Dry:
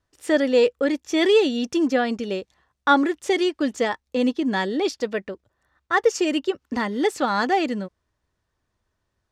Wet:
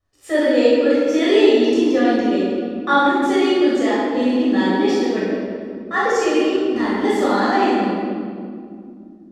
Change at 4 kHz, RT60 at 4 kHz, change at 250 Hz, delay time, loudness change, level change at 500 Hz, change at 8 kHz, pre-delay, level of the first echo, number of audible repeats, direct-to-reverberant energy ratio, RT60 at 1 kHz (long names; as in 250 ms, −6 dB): +2.5 dB, 1.4 s, +6.5 dB, no echo audible, +5.0 dB, +5.0 dB, +0.5 dB, 12 ms, no echo audible, no echo audible, −9.5 dB, 2.0 s